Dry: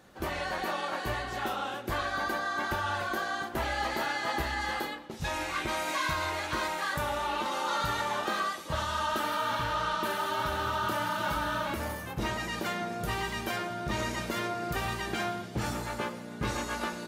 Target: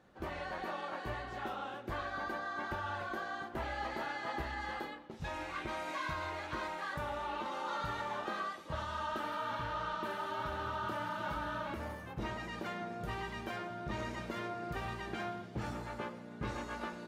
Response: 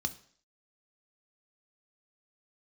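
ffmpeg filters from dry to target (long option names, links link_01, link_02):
-af "lowpass=frequency=2300:poles=1,volume=-6.5dB"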